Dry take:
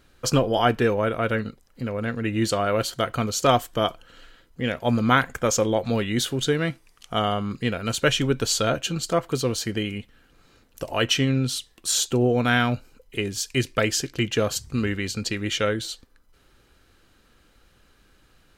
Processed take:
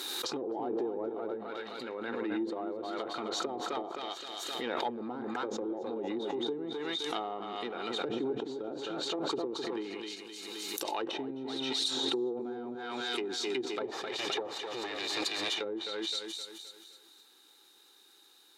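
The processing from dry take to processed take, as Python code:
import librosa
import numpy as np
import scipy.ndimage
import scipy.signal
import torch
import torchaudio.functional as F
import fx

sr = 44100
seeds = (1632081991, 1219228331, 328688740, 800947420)

p1 = fx.lower_of_two(x, sr, delay_ms=1.7, at=(13.85, 15.59))
p2 = scipy.signal.sosfilt(scipy.signal.butter(4, 45.0, 'highpass', fs=sr, output='sos'), p1)
p3 = 10.0 ** (-17.0 / 20.0) * np.tanh(p2 / 10.0 ** (-17.0 / 20.0))
p4 = fx.graphic_eq_15(p3, sr, hz=(100, 400, 4000), db=(-7, 5, 3))
p5 = p4 + fx.echo_feedback(p4, sr, ms=260, feedback_pct=44, wet_db=-7, dry=0)
p6 = fx.env_lowpass_down(p5, sr, base_hz=420.0, full_db=-18.5)
p7 = np.diff(p6, prepend=0.0)
p8 = fx.small_body(p7, sr, hz=(340.0, 820.0, 3700.0), ring_ms=20, db=17)
p9 = fx.pre_swell(p8, sr, db_per_s=20.0)
y = p9 * 10.0 ** (1.5 / 20.0)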